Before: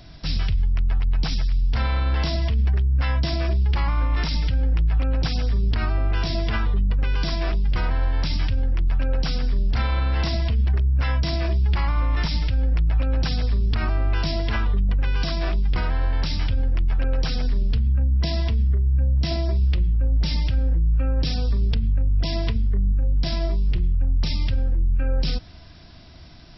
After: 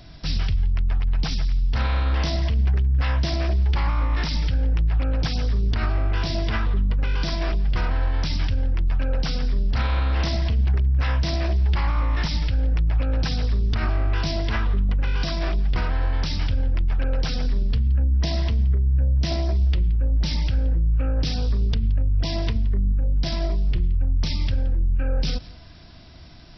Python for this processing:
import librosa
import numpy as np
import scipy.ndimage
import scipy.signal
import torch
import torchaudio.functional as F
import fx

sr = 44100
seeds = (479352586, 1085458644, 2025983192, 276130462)

y = x + 10.0 ** (-20.5 / 20.0) * np.pad(x, (int(172 * sr / 1000.0), 0))[:len(x)]
y = fx.doppler_dist(y, sr, depth_ms=0.24)